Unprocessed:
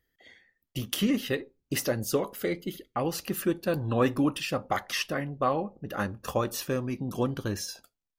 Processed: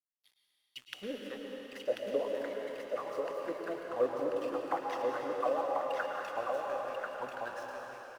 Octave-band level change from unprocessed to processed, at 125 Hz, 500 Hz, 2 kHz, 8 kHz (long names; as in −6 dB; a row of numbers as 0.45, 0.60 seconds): −26.5 dB, −2.5 dB, −6.5 dB, below −20 dB